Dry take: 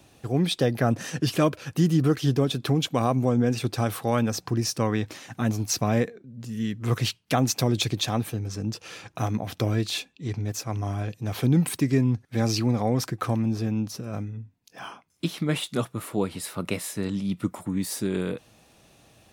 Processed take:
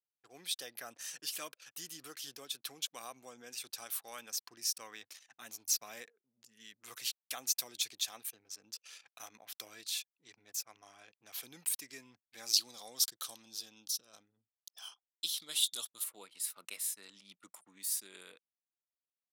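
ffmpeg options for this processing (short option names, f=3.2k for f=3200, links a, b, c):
-filter_complex "[0:a]asettb=1/sr,asplit=3[a][b][c];[a]atrim=end=12.534[d];[b]atrim=start=12.53:end=16.04,asetpts=PTS-STARTPTS,afade=t=in:d=0.004:c=qsin,afade=t=out:st=3.506:d=0.004:c=qsin,highshelf=f=2.8k:t=q:w=3:g=6.5[e];[c]atrim=start=16.036[f];[d][e]acrossfade=d=0.004:c1=hsin:c2=qsin[g];[g][f]acrossfade=d=0.004:c1=qsin:c2=hsin,anlmdn=0.251,highpass=f=340:p=1,aderivative,volume=-3dB"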